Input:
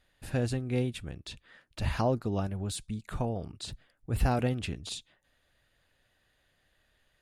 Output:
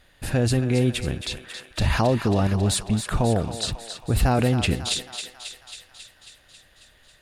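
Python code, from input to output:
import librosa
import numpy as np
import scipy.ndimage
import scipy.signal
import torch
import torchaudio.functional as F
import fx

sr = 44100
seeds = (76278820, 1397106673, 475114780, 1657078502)

p1 = fx.over_compress(x, sr, threshold_db=-32.0, ratio=-0.5)
p2 = x + (p1 * librosa.db_to_amplitude(-0.5))
p3 = fx.echo_thinned(p2, sr, ms=272, feedback_pct=68, hz=630.0, wet_db=-8.5)
y = p3 * librosa.db_to_amplitude(5.5)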